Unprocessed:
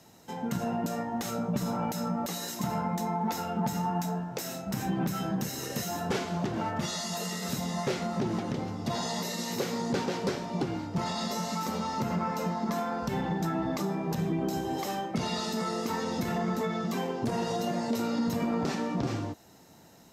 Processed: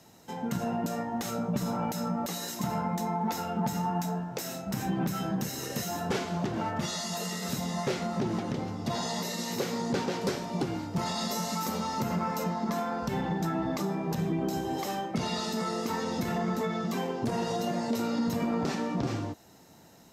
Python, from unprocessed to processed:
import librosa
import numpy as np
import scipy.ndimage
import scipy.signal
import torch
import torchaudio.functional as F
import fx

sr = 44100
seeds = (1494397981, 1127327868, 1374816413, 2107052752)

y = fx.high_shelf(x, sr, hz=8600.0, db=9.5, at=(10.21, 12.44))